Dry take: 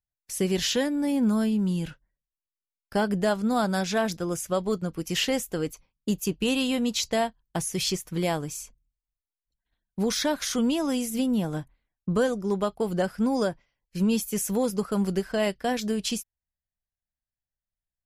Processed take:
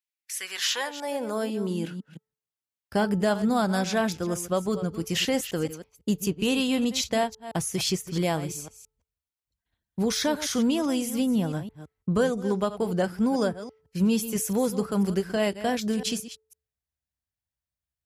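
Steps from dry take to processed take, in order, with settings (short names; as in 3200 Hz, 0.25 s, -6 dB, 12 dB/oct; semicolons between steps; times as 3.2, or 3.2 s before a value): reverse delay 0.167 s, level -13 dB; de-hum 437.4 Hz, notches 3; high-pass sweep 2300 Hz -> 71 Hz, 0.15–2.82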